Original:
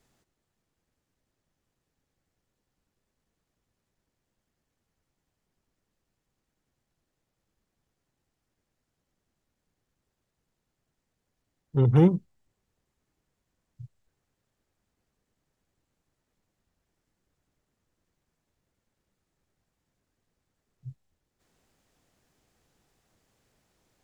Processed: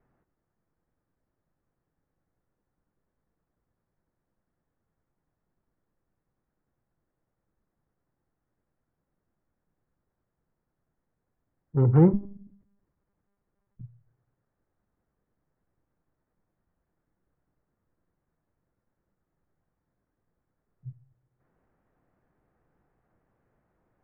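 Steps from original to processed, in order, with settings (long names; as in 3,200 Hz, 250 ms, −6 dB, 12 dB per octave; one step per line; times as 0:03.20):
low-pass filter 1,700 Hz 24 dB per octave
on a send at −14 dB: convolution reverb RT60 0.55 s, pre-delay 6 ms
0:12.13–0:13.81: on the sum: one-pitch LPC vocoder at 8 kHz 200 Hz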